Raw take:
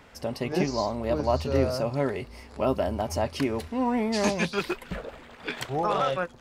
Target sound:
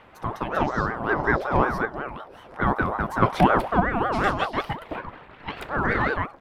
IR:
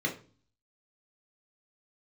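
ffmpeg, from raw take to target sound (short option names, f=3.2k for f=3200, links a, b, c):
-filter_complex "[0:a]firequalizer=gain_entry='entry(1000,0);entry(5900,-18);entry(11000,-9)':delay=0.05:min_phase=1,asettb=1/sr,asplit=3[a][b][c];[a]atrim=end=3.224[d];[b]atrim=start=3.22:end=3.8,asetpts=PTS-STARTPTS,afade=t=in:d=0.004:c=qsin,afade=t=out:st=0.576:d=0.004:c=qsin,acontrast=87[e];[c]atrim=start=3.796[f];[d][e]acrossfade=d=0.004:c1=hsin:c2=qsin[g];[g][f]acrossfade=d=0.004:c1=qsin:c2=hsin,bandreject=f=60:t=h:w=6,bandreject=f=120:t=h:w=6,bandreject=f=180:t=h:w=6,bandreject=f=240:t=h:w=6,bandreject=f=300:t=h:w=6,bandreject=f=360:t=h:w=6,asettb=1/sr,asplit=3[h][i][j];[h]atrim=end=1.854[k];[i]atrim=start=1.85:end=2.44,asetpts=PTS-STARTPTS,afade=t=in:d=0.004:c=qsin,afade=t=out:st=0.586:d=0.004:c=qsin,acompressor=threshold=-38dB:ratio=2[l];[j]atrim=start=2.436[m];[k][l]acrossfade=d=0.004:c1=hsin:c2=qsin[n];[n][m]acrossfade=d=0.004:c1=qsin:c2=hsin,asettb=1/sr,asplit=3[o][p][q];[o]atrim=end=5.004[r];[p]atrim=start=5:end=5.56,asetpts=PTS-STARTPTS,afade=t=in:d=0.004:c=qsin,afade=t=out:st=0.556:d=0.004:c=qsin,highshelf=f=6k:g=-9[s];[q]atrim=start=5.556[t];[r][s]acrossfade=d=0.004:c1=hsin:c2=qsin[u];[u][t]acrossfade=d=0.004:c1=qsin:c2=hsin,aeval=exprs='val(0)*sin(2*PI*730*n/s+730*0.4/5.4*sin(2*PI*5.4*n/s))':c=same,volume=5.5dB"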